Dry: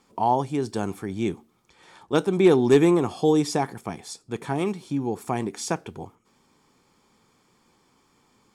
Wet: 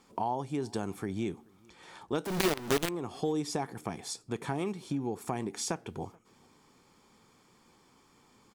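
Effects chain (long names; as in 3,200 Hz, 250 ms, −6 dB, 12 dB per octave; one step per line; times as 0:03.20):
0:02.25–0:02.89: log-companded quantiser 2 bits
downward compressor 3 to 1, threshold −32 dBFS, peak gain reduction 21 dB
slap from a distant wall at 74 metres, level −28 dB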